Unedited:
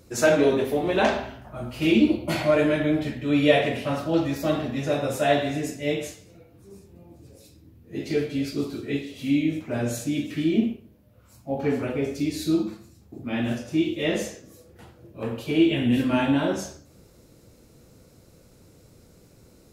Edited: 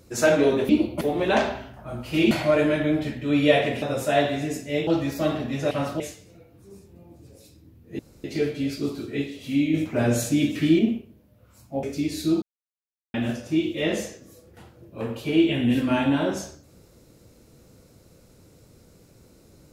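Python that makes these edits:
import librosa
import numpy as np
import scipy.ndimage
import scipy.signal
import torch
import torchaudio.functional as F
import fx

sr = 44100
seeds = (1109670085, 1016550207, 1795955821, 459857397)

y = fx.edit(x, sr, fx.move(start_s=1.99, length_s=0.32, to_s=0.69),
    fx.swap(start_s=3.82, length_s=0.29, other_s=4.95, other_length_s=1.05),
    fx.insert_room_tone(at_s=7.99, length_s=0.25),
    fx.clip_gain(start_s=9.49, length_s=1.05, db=5.0),
    fx.cut(start_s=11.58, length_s=0.47),
    fx.silence(start_s=12.64, length_s=0.72), tone=tone)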